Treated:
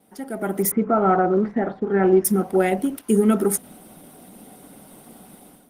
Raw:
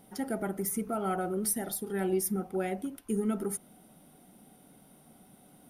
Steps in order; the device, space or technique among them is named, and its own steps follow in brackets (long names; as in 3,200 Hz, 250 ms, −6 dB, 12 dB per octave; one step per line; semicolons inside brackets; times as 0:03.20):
0:00.71–0:02.25: low-pass filter 1,900 Hz 24 dB per octave
noise gate with hold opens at −50 dBFS
video call (high-pass filter 180 Hz 12 dB per octave; automatic gain control gain up to 14.5 dB; Opus 16 kbit/s 48,000 Hz)